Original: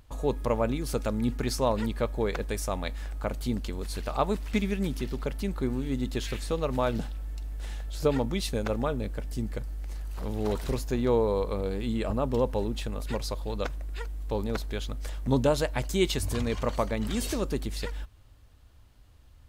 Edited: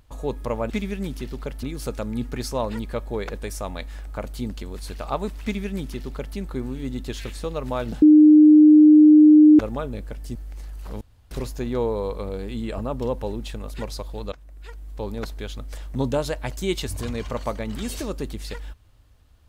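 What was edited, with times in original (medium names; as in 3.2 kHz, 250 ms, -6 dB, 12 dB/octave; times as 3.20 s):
4.50–5.43 s: copy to 0.70 s
7.09–8.66 s: bleep 304 Hz -7.5 dBFS
9.42–9.67 s: delete
10.33–10.63 s: room tone
13.64–14.63 s: fade in equal-power, from -17 dB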